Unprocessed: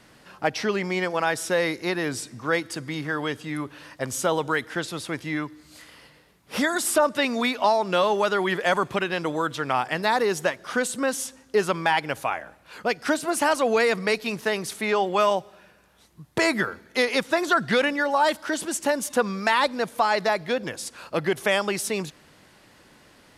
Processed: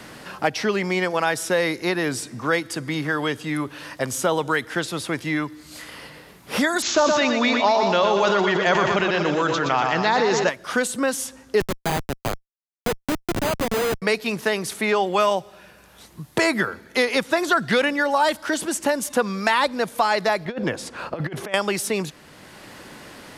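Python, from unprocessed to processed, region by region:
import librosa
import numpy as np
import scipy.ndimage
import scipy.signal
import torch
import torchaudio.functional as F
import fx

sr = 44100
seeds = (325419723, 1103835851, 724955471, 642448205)

y = fx.chain(x, sr, fx.echo_feedback(ms=120, feedback_pct=59, wet_db=-7.5),
    fx.resample_bad(factor=3, down='none', up='filtered'),
    fx.sustainer(db_per_s=25.0), at=(6.82, 10.49))
y = fx.chain(y, sr, fx.schmitt(flips_db=-20.0),
    fx.resample_bad(factor=8, down='none', up='hold'), at=(11.6, 14.02))
y = fx.chain(y, sr, fx.lowpass(hz=1600.0, slope=6),
    fx.over_compress(threshold_db=-30.0, ratio=-0.5), at=(20.45, 21.54))
y = fx.high_shelf(y, sr, hz=12000.0, db=3.5)
y = fx.band_squash(y, sr, depth_pct=40)
y = y * 10.0 ** (2.0 / 20.0)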